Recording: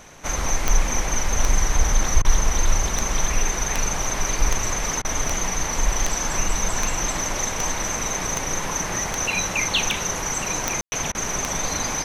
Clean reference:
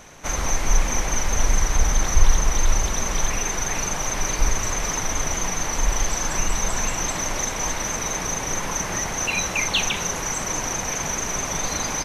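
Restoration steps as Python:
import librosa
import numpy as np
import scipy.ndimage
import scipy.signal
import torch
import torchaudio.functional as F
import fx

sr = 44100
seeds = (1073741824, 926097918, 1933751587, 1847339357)

y = fx.fix_declick_ar(x, sr, threshold=10.0)
y = fx.fix_ambience(y, sr, seeds[0], print_start_s=0.0, print_end_s=0.5, start_s=10.81, end_s=10.92)
y = fx.fix_interpolate(y, sr, at_s=(2.22, 5.02, 11.12), length_ms=26.0)
y = fx.fix_echo_inverse(y, sr, delay_ms=1143, level_db=-10.5)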